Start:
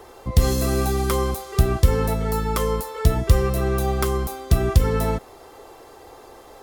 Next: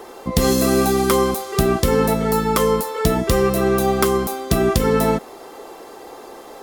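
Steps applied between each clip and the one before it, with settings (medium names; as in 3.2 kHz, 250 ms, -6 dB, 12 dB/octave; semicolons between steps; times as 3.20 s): resonant low shelf 140 Hz -11 dB, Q 1.5; trim +6 dB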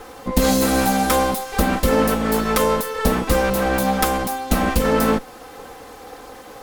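comb filter that takes the minimum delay 3.9 ms; trim +1 dB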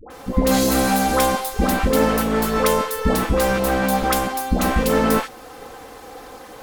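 phase dispersion highs, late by 103 ms, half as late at 800 Hz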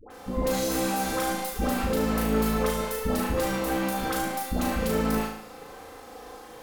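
peak limiter -11.5 dBFS, peak gain reduction 7 dB; flutter echo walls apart 6.3 m, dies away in 0.63 s; trim -8 dB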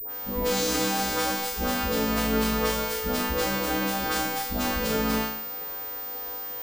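partials quantised in pitch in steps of 2 st; class-D stage that switches slowly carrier 15 kHz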